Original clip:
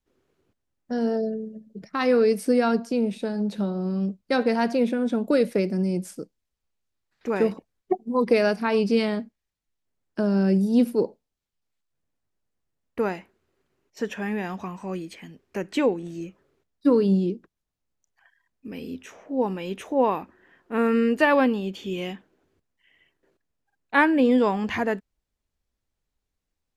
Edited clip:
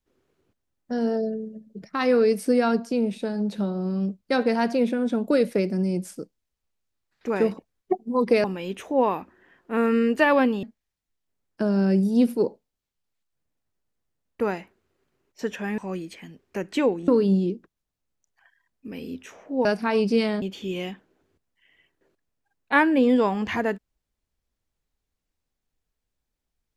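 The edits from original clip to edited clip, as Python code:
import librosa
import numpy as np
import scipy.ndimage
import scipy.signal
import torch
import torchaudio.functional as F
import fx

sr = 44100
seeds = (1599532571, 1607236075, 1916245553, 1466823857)

y = fx.edit(x, sr, fx.swap(start_s=8.44, length_s=0.77, other_s=19.45, other_length_s=2.19),
    fx.cut(start_s=14.36, length_s=0.42),
    fx.cut(start_s=16.08, length_s=0.8), tone=tone)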